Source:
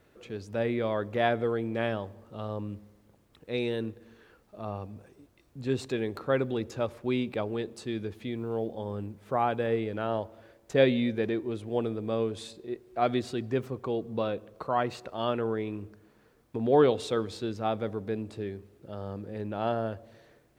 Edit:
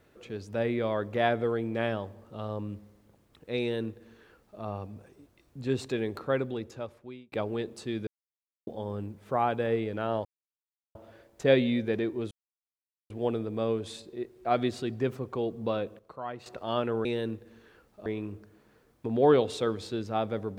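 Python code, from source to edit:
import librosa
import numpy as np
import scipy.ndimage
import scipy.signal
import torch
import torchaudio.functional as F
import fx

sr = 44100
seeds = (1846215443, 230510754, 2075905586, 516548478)

y = fx.edit(x, sr, fx.duplicate(start_s=3.6, length_s=1.01, to_s=15.56),
    fx.fade_out_span(start_s=6.15, length_s=1.17),
    fx.silence(start_s=8.07, length_s=0.6),
    fx.insert_silence(at_s=10.25, length_s=0.7),
    fx.insert_silence(at_s=11.61, length_s=0.79),
    fx.clip_gain(start_s=14.5, length_s=0.47, db=-10.0), tone=tone)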